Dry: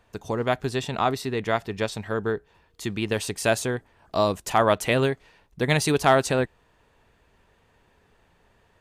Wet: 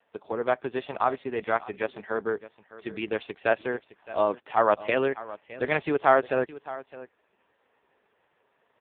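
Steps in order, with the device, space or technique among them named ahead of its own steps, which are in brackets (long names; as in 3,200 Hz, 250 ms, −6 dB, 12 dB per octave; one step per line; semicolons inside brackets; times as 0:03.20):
satellite phone (band-pass filter 320–3,200 Hz; single-tap delay 614 ms −17 dB; AMR narrowband 4.75 kbit/s 8,000 Hz)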